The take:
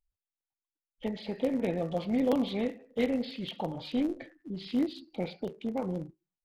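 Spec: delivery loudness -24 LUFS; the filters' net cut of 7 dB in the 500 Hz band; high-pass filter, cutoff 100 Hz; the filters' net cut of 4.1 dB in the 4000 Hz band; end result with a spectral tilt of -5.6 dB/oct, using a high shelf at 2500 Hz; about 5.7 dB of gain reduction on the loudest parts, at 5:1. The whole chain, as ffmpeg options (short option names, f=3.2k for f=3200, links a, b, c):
-af "highpass=100,equalizer=f=500:t=o:g=-8,highshelf=f=2.5k:g=4,equalizer=f=4k:t=o:g=-8.5,acompressor=threshold=-33dB:ratio=5,volume=15.5dB"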